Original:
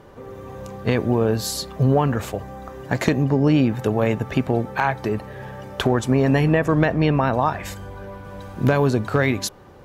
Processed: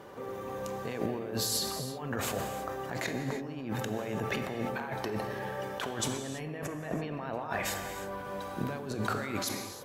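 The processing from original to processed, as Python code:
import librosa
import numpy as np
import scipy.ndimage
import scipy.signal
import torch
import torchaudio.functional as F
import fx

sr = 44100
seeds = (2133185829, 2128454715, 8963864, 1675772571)

y = fx.highpass(x, sr, hz=290.0, slope=6)
y = fx.over_compress(y, sr, threshold_db=-30.0, ratio=-1.0)
y = fx.high_shelf(y, sr, hz=11000.0, db=4.5)
y = fx.rev_gated(y, sr, seeds[0], gate_ms=360, shape='flat', drr_db=6.0)
y = fx.sustainer(y, sr, db_per_s=44.0)
y = y * 10.0 ** (-7.0 / 20.0)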